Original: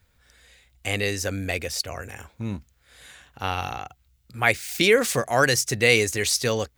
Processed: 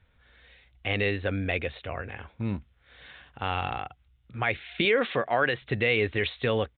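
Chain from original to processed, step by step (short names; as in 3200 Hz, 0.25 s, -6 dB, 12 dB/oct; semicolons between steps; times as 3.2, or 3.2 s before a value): 4.85–5.62 HPF 260 Hz 6 dB/oct; limiter -13 dBFS, peak gain reduction 8.5 dB; downsampling 8000 Hz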